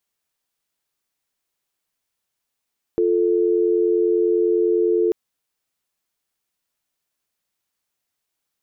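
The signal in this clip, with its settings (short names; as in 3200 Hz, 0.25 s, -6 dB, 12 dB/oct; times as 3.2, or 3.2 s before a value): call progress tone dial tone, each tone -18 dBFS 2.14 s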